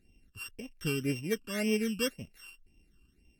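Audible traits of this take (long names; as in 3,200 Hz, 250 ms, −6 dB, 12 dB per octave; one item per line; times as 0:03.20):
a buzz of ramps at a fixed pitch in blocks of 16 samples
phaser sweep stages 12, 1.9 Hz, lowest notch 640–1,400 Hz
Ogg Vorbis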